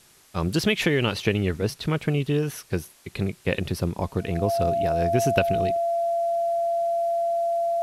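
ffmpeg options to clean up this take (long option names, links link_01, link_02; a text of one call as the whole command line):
ffmpeg -i in.wav -af "bandreject=frequency=680:width=30,agate=range=-21dB:threshold=-44dB" out.wav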